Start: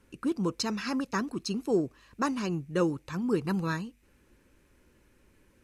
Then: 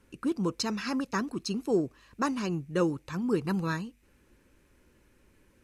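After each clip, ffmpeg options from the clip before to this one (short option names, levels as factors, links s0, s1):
-af anull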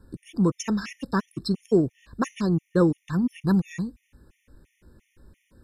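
-af "lowshelf=f=220:g=11,afftfilt=real='re*gt(sin(2*PI*2.9*pts/sr)*(1-2*mod(floor(b*sr/1024/1800),2)),0)':imag='im*gt(sin(2*PI*2.9*pts/sr)*(1-2*mod(floor(b*sr/1024/1800),2)),0)':win_size=1024:overlap=0.75,volume=1.5"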